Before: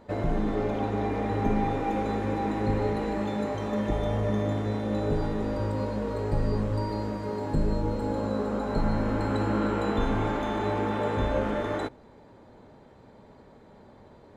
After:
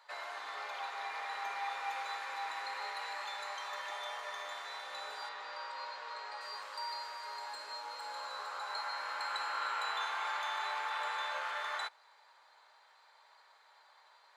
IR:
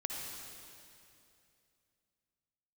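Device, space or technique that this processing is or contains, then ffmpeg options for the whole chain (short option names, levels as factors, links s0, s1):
headphones lying on a table: -filter_complex "[0:a]asettb=1/sr,asplit=3[s0][s1][s2];[s0]atrim=end=5.294[s3];[s1]atrim=start=5.29:end=6.41,asetpts=PTS-STARTPTS,afade=t=in:d=0.004:c=qsin,afade=t=out:st=1.116:d=0.004:c=qsin,lowpass=5100[s4];[s2]atrim=start=6.406[s5];[s3][s4]acrossfade=d=0.004:c1=hsin:c2=qsin[s6];[s6][s5]acrossfade=d=0.004:c1=qsin:c2=hsin,highpass=f=1000:w=0.5412,highpass=f=1000:w=1.3066,equalizer=f=4400:t=o:w=0.36:g=7.5"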